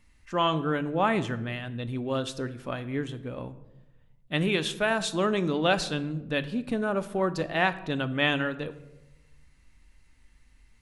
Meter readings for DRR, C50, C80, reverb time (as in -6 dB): 11.0 dB, 15.5 dB, 18.0 dB, 1.0 s